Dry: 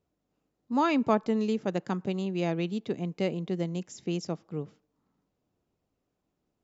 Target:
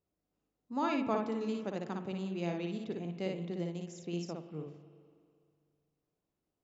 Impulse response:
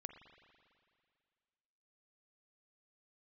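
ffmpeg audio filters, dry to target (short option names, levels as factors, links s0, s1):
-filter_complex "[0:a]bandreject=f=60:t=h:w=6,bandreject=f=120:t=h:w=6,bandreject=f=180:t=h:w=6,bandreject=f=240:t=h:w=6,asplit=2[s0][s1];[1:a]atrim=start_sample=2205,adelay=58[s2];[s1][s2]afir=irnorm=-1:irlink=0,volume=1.33[s3];[s0][s3]amix=inputs=2:normalize=0,volume=0.376"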